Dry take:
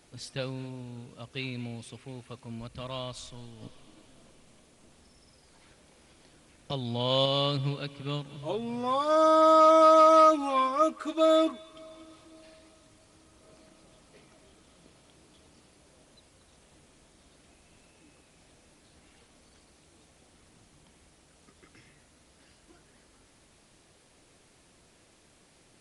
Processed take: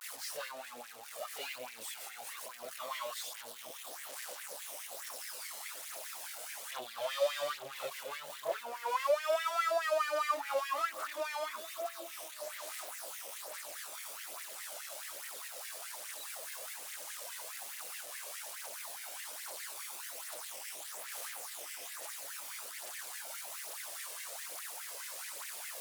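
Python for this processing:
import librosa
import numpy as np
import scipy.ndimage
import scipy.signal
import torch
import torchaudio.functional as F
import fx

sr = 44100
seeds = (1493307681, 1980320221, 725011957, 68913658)

y = x + 0.5 * 10.0 ** (-28.0 / 20.0) * np.diff(np.sign(x), prepend=np.sign(x[:1]))
y = fx.add_hum(y, sr, base_hz=60, snr_db=30)
y = fx.tube_stage(y, sr, drive_db=41.0, bias=0.55)
y = fx.chorus_voices(y, sr, voices=2, hz=0.59, base_ms=27, depth_ms=1.0, mix_pct=60)
y = fx.vibrato(y, sr, rate_hz=0.86, depth_cents=95.0)
y = fx.filter_lfo_highpass(y, sr, shape='sine', hz=4.8, low_hz=530.0, high_hz=2000.0, q=4.8)
y = F.gain(torch.from_numpy(y), 4.5).numpy()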